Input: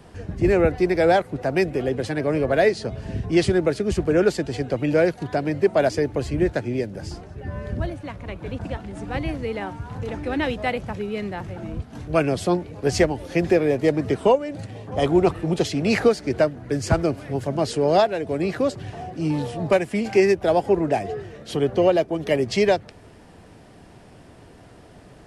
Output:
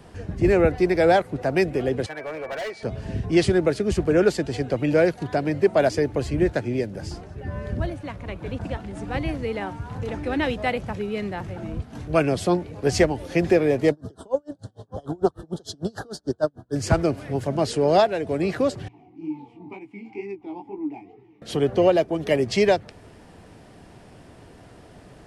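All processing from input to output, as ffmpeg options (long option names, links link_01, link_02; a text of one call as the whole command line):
ffmpeg -i in.wav -filter_complex "[0:a]asettb=1/sr,asplit=3[link_01][link_02][link_03];[link_01]atrim=end=2.064[link_04];[link_02]atrim=start=2.06:end=2.83,asetpts=PTS-STARTPTS,afade=type=in:duration=0.004:curve=qsin,afade=type=out:start_time=0.766:duration=0.004:curve=qsin,acrossover=split=570 2000:gain=0.1 1 0.224[link_05][link_06][link_07];[link_05][link_06][link_07]amix=inputs=3:normalize=0,volume=28dB,asoftclip=hard,volume=-28dB,aeval=exprs='val(0)+0.00562*sin(2*PI*2300*n/s)':channel_layout=same[link_08];[link_03]atrim=start=2.826[link_09];[link_04][link_08]acrossfade=duration=0.004:curve1=hsin:curve2=qsin[link_10];[link_10][link_09]acrossfade=duration=0.004:curve1=qsin:curve2=hsin,asettb=1/sr,asplit=3[link_11][link_12][link_13];[link_11]atrim=end=13.914[link_14];[link_12]atrim=start=13.91:end=16.76,asetpts=PTS-STARTPTS,afade=type=in:duration=0.004:curve=qsin,afade=type=out:start_time=2.846:duration=0.004:curve=qsin,asuperstop=centerf=2300:order=8:qfactor=1.5,aeval=exprs='val(0)*pow(10,-36*(0.5-0.5*cos(2*PI*6.7*n/s))/20)':channel_layout=same[link_15];[link_13]atrim=start=16.756[link_16];[link_14][link_15]acrossfade=duration=0.004:curve1=hsin:curve2=qsin[link_17];[link_17][link_16]acrossfade=duration=0.004:curve1=qsin:curve2=hsin,asettb=1/sr,asplit=3[link_18][link_19][link_20];[link_18]atrim=end=18.884[link_21];[link_19]atrim=start=18.88:end=21.42,asetpts=PTS-STARTPTS,afade=type=in:duration=0.004:curve=qsin,afade=type=out:start_time=2.536:duration=0.004:curve=qsin,equalizer=frequency=120:width=3.7:gain=9.5,flanger=delay=15:depth=7.5:speed=2.1,asplit=3[link_22][link_23][link_24];[link_22]bandpass=frequency=300:width_type=q:width=8,volume=0dB[link_25];[link_23]bandpass=frequency=870:width_type=q:width=8,volume=-6dB[link_26];[link_24]bandpass=frequency=2240:width_type=q:width=8,volume=-9dB[link_27];[link_25][link_26][link_27]amix=inputs=3:normalize=0[link_28];[link_20]atrim=start=21.416[link_29];[link_21][link_28]acrossfade=duration=0.004:curve1=hsin:curve2=qsin[link_30];[link_30][link_29]acrossfade=duration=0.004:curve1=qsin:curve2=hsin" out.wav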